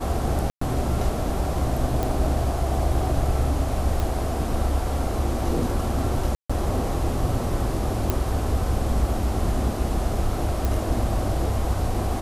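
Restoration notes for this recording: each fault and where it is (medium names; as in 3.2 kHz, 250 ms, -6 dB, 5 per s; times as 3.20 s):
0.50–0.61 s: dropout 114 ms
2.03 s: pop
4.00 s: pop
6.35–6.50 s: dropout 145 ms
8.10 s: pop
10.65 s: pop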